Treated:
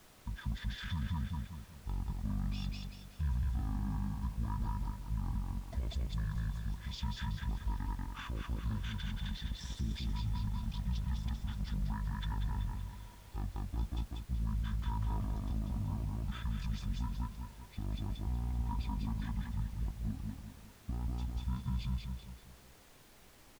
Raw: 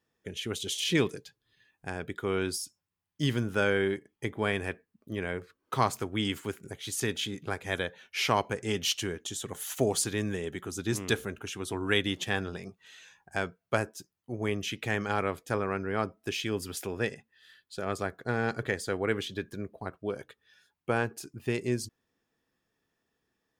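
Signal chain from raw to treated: amplifier tone stack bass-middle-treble 10-0-1; on a send: feedback delay 191 ms, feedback 41%, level -3.5 dB; on the sum: peak limiter -43.5 dBFS, peak gain reduction 11 dB; pitch shift -11.5 st; bass shelf 470 Hz +9.5 dB; small resonant body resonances 970/3500 Hz, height 16 dB, ringing for 60 ms; added noise pink -67 dBFS; trim +7.5 dB

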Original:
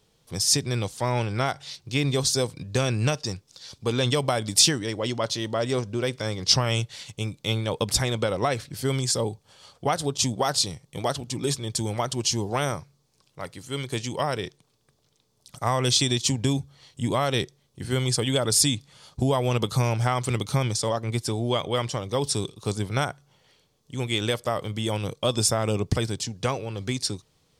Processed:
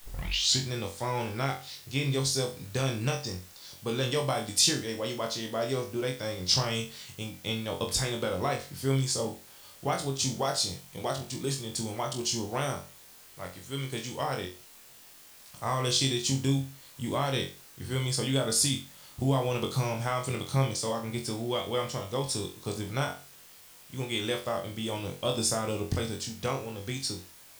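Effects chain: tape start-up on the opening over 0.64 s; word length cut 8-bit, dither triangular; flutter echo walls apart 3.8 m, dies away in 0.33 s; trim -7 dB

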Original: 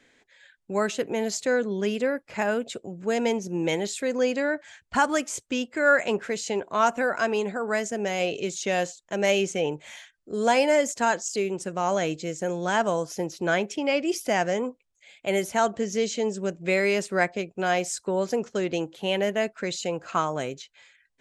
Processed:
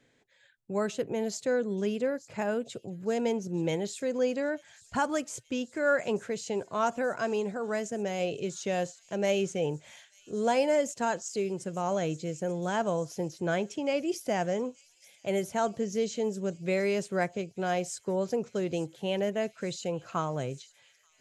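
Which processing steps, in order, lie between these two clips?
ten-band graphic EQ 125 Hz +12 dB, 500 Hz +3 dB, 2 kHz -3 dB; feedback echo behind a high-pass 882 ms, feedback 75%, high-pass 4.7 kHz, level -15.5 dB; trim -7 dB

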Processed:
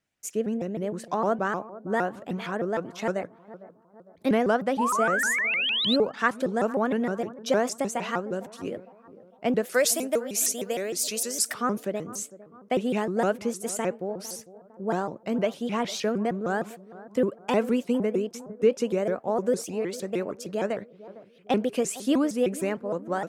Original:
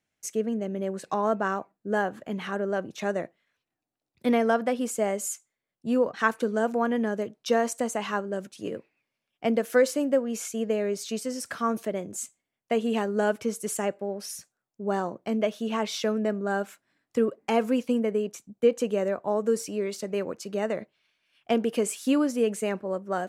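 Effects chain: 4.78–5.96 s: painted sound rise 950–4000 Hz -26 dBFS; 9.74–11.54 s: RIAA curve recording; on a send: bucket-brigade echo 454 ms, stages 4096, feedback 46%, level -17.5 dB; on the sum: vibrato with a chosen wave saw up 6.5 Hz, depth 250 cents

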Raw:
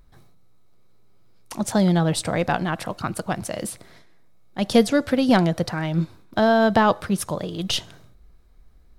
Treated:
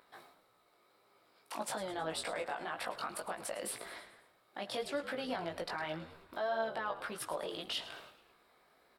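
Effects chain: treble shelf 4.5 kHz -7.5 dB; compression 4:1, threshold -35 dBFS, peak gain reduction 20 dB; high-pass 610 Hz 12 dB/octave; peaking EQ 6.3 kHz -9.5 dB 0.33 oct; peak limiter -34 dBFS, peak gain reduction 11 dB; chorus 1.8 Hz, delay 17.5 ms, depth 2.7 ms; frequency-shifting echo 107 ms, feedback 51%, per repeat -78 Hz, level -14.5 dB; trim +9.5 dB

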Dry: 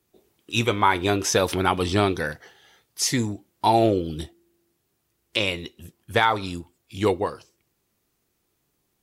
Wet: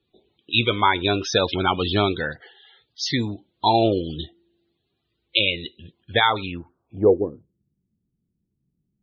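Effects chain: low-pass sweep 3.8 kHz -> 190 Hz, 6.35–7.46 s; loudest bins only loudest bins 64

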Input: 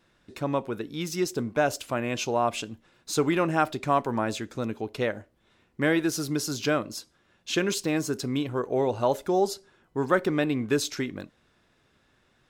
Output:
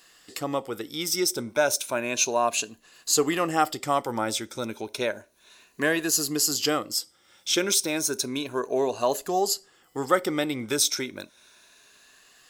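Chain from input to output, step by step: drifting ripple filter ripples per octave 1.5, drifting +0.32 Hz, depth 9 dB; tone controls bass -9 dB, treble +11 dB; tape noise reduction on one side only encoder only

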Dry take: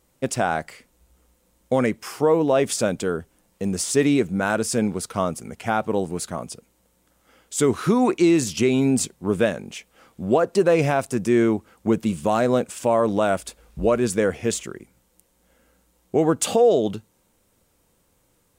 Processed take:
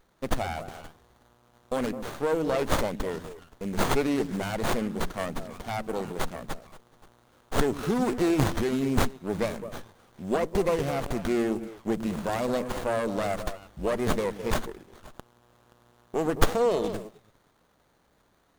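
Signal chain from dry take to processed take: pre-emphasis filter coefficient 0.8; repeats whose band climbs or falls 105 ms, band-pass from 200 Hz, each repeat 1.4 oct, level -7 dB; sliding maximum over 17 samples; trim +6.5 dB

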